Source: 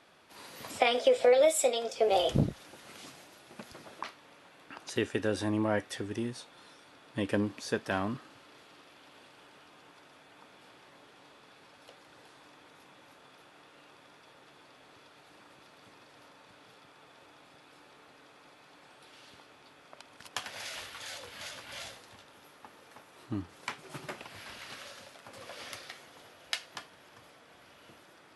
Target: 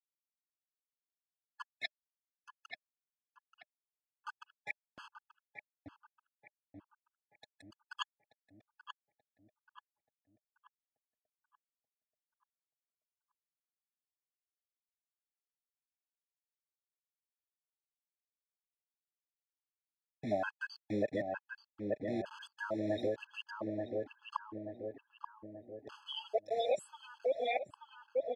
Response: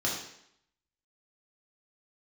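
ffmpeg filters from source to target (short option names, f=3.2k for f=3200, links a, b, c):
-filter_complex "[0:a]areverse,equalizer=f=190:w=0.5:g=-9.5,afftfilt=real='re*gte(hypot(re,im),0.0282)':imag='im*gte(hypot(re,im),0.0282)':win_size=1024:overlap=0.75,acrusher=bits=7:mix=0:aa=0.000001,asplit=2[a][b];[b]adelay=882,lowpass=f=1.4k:p=1,volume=-8dB,asplit=2[c][d];[d]adelay=882,lowpass=f=1.4k:p=1,volume=0.53,asplit=2[e][f];[f]adelay=882,lowpass=f=1.4k:p=1,volume=0.53,asplit=2[g][h];[h]adelay=882,lowpass=f=1.4k:p=1,volume=0.53,asplit=2[i][j];[j]adelay=882,lowpass=f=1.4k:p=1,volume=0.53,asplit=2[k][l];[l]adelay=882,lowpass=f=1.4k:p=1,volume=0.53[m];[c][e][g][i][k][m]amix=inputs=6:normalize=0[n];[a][n]amix=inputs=2:normalize=0,acompressor=threshold=-37dB:ratio=16,highpass=110,lowpass=3.8k,equalizer=f=610:w=6.3:g=12,afftfilt=real='re*gt(sin(2*PI*1.1*pts/sr)*(1-2*mod(floor(b*sr/1024/850),2)),0)':imag='im*gt(sin(2*PI*1.1*pts/sr)*(1-2*mod(floor(b*sr/1024/850),2)),0)':win_size=1024:overlap=0.75,volume=6dB"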